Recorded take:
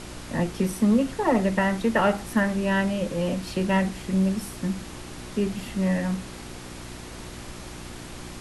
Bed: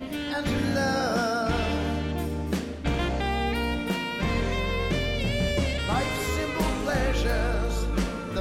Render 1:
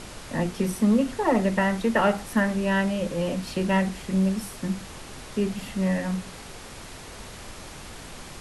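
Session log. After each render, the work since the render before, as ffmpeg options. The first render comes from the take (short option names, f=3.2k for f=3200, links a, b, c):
-af "bandreject=f=60:t=h:w=4,bandreject=f=120:t=h:w=4,bandreject=f=180:t=h:w=4,bandreject=f=240:t=h:w=4,bandreject=f=300:t=h:w=4,bandreject=f=360:t=h:w=4"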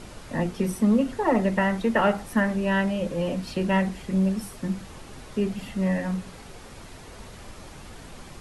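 -af "afftdn=nr=6:nf=-42"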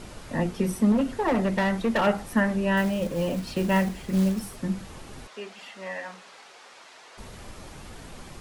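-filter_complex "[0:a]asettb=1/sr,asplit=3[a][b][c];[a]atrim=end=0.924[d];[b]atrim=start=0.92:end=2.07,asetpts=PTS-STARTPTS,afade=t=in:d=0.004:c=qsin,afade=t=out:st=1.146:d=0.004:c=qsin,volume=19dB,asoftclip=hard,volume=-19dB[e];[c]atrim=start=2.066[f];[d][e]acrossfade=d=0.004:c1=hsin:c2=qsin[g];[g][f]acrossfade=d=0.004:c1=qsin:c2=hsin,asettb=1/sr,asplit=3[h][i][j];[h]atrim=end=2.774[k];[i]atrim=start=2.77:end=4.56,asetpts=PTS-STARTPTS,afade=t=in:d=0.004:c=qsin,afade=t=out:st=1.786:d=0.004:c=qsin,acrusher=bits=5:mode=log:mix=0:aa=0.000001[l];[j]atrim=start=4.556[m];[k][l]acrossfade=d=0.004:c1=hsin:c2=qsin[n];[n][m]acrossfade=d=0.004:c1=qsin:c2=hsin,asettb=1/sr,asplit=3[o][p][q];[o]atrim=end=5.274[r];[p]atrim=start=5.27:end=7.18,asetpts=PTS-STARTPTS,afade=t=in:d=0.004:c=qsin,afade=t=out:st=1.906:d=0.004:c=qsin,highpass=720,lowpass=6.6k[s];[q]atrim=start=7.176[t];[r][s]acrossfade=d=0.004:c1=hsin:c2=qsin[u];[u][t]acrossfade=d=0.004:c1=qsin:c2=hsin"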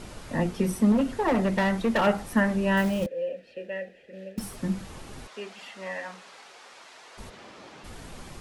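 -filter_complex "[0:a]asettb=1/sr,asplit=3[a][b][c];[a]atrim=end=3.064[d];[b]atrim=start=3.06:end=4.38,asetpts=PTS-STARTPTS,afade=t=in:d=0.004:c=qsin,afade=t=out:st=1.316:d=0.004:c=qsin,asplit=3[e][f][g];[e]bandpass=f=530:t=q:w=8,volume=0dB[h];[f]bandpass=f=1.84k:t=q:w=8,volume=-6dB[i];[g]bandpass=f=2.48k:t=q:w=8,volume=-9dB[j];[h][i][j]amix=inputs=3:normalize=0[k];[c]atrim=start=4.376[l];[d][k]acrossfade=d=0.004:c1=hsin:c2=qsin[m];[m][l]acrossfade=d=0.004:c1=qsin:c2=hsin,asplit=3[n][o][p];[n]afade=t=out:st=7.29:d=0.02[q];[o]highpass=240,lowpass=4.9k,afade=t=in:st=7.29:d=0.02,afade=t=out:st=7.83:d=0.02[r];[p]afade=t=in:st=7.83:d=0.02[s];[q][r][s]amix=inputs=3:normalize=0"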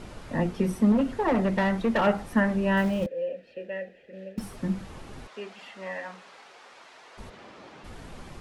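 -af "highshelf=f=4.7k:g=-9"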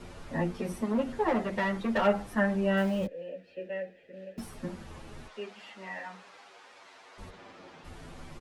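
-filter_complex "[0:a]acrossover=split=310|3400[a][b][c];[a]asoftclip=type=tanh:threshold=-28dB[d];[d][b][c]amix=inputs=3:normalize=0,asplit=2[e][f];[f]adelay=8.6,afreqshift=-0.26[g];[e][g]amix=inputs=2:normalize=1"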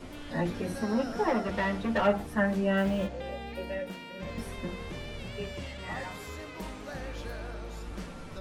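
-filter_complex "[1:a]volume=-14dB[a];[0:a][a]amix=inputs=2:normalize=0"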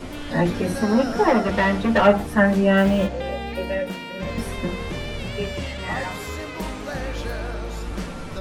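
-af "volume=10dB"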